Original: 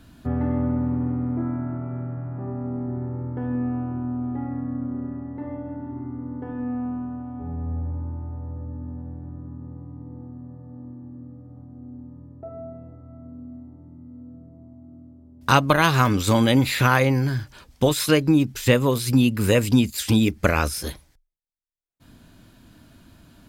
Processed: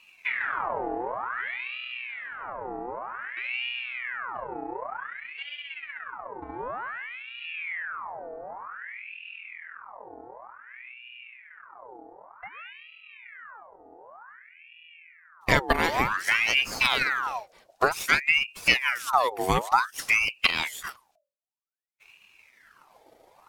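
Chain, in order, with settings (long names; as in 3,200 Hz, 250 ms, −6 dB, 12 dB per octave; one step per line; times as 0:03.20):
spectral magnitudes quantised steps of 15 dB
transient designer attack +5 dB, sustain −3 dB
ring modulator whose carrier an LFO sweeps 1,600 Hz, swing 65%, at 0.54 Hz
level −4 dB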